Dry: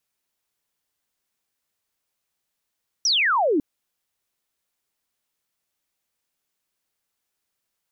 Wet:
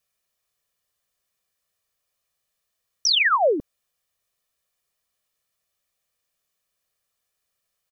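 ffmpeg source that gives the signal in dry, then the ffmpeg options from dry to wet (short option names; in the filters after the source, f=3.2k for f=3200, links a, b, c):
-f lavfi -i "aevalsrc='0.141*clip(t/0.002,0,1)*clip((0.55-t)/0.002,0,1)*sin(2*PI*6000*0.55/log(270/6000)*(exp(log(270/6000)*t/0.55)-1))':d=0.55:s=44100"
-af "aecho=1:1:1.7:0.54"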